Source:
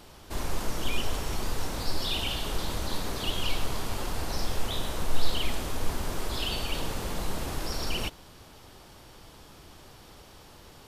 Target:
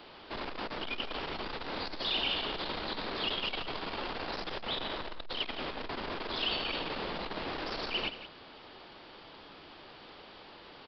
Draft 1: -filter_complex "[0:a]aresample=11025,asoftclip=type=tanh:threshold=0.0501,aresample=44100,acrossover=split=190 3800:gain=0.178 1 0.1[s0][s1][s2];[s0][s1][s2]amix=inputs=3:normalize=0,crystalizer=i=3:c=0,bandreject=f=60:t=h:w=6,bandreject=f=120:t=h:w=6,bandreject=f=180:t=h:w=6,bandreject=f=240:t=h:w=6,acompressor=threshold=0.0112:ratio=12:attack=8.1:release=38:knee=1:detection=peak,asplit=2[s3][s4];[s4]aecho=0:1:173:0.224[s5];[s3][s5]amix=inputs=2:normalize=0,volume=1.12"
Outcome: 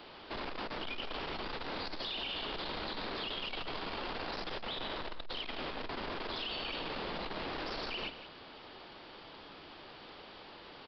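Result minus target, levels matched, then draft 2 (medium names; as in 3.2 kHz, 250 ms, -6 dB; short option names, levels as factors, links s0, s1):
compression: peak gain reduction +10 dB
-filter_complex "[0:a]aresample=11025,asoftclip=type=tanh:threshold=0.0501,aresample=44100,acrossover=split=190 3800:gain=0.178 1 0.1[s0][s1][s2];[s0][s1][s2]amix=inputs=3:normalize=0,crystalizer=i=3:c=0,bandreject=f=60:t=h:w=6,bandreject=f=120:t=h:w=6,bandreject=f=180:t=h:w=6,bandreject=f=240:t=h:w=6,asplit=2[s3][s4];[s4]aecho=0:1:173:0.224[s5];[s3][s5]amix=inputs=2:normalize=0,volume=1.12"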